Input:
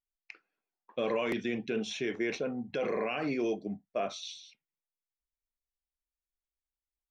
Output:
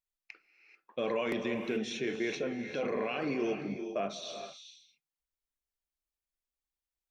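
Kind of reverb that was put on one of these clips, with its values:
reverb whose tail is shaped and stops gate 460 ms rising, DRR 7 dB
level −1.5 dB

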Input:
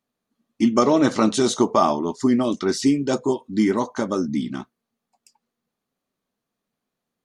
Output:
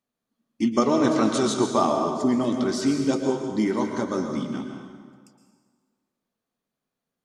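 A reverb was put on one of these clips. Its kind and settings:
dense smooth reverb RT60 1.7 s, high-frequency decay 0.75×, pre-delay 105 ms, DRR 3.5 dB
level −4.5 dB

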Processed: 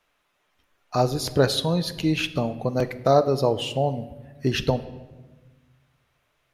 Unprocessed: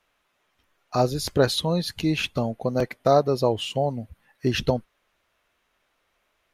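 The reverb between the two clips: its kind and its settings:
rectangular room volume 810 cubic metres, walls mixed, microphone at 0.4 metres

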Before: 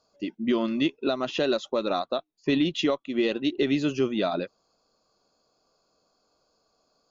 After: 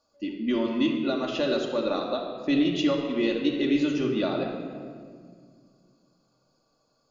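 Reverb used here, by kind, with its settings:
rectangular room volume 3,500 cubic metres, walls mixed, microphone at 2.4 metres
level −4 dB

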